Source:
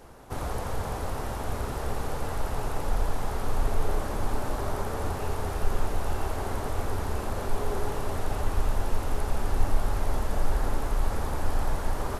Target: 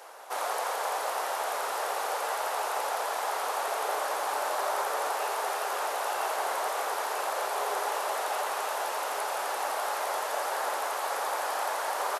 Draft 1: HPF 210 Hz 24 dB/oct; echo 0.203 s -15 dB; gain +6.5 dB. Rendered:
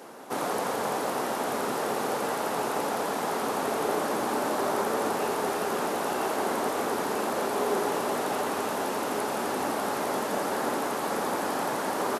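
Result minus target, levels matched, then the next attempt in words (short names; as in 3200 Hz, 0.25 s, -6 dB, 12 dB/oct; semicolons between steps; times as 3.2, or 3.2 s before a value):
250 Hz band +19.0 dB
HPF 570 Hz 24 dB/oct; echo 0.203 s -15 dB; gain +6.5 dB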